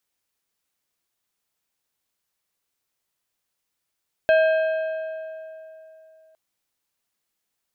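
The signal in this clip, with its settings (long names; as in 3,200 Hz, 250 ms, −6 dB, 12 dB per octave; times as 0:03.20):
struck metal plate, length 2.06 s, lowest mode 638 Hz, modes 5, decay 3.06 s, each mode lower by 8 dB, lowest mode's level −13 dB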